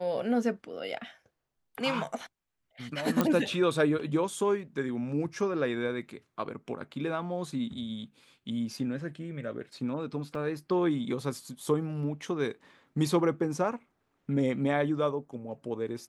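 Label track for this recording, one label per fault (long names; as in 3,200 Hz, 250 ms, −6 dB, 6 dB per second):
3.210000	3.210000	click −11 dBFS
10.350000	10.350000	drop-out 2.6 ms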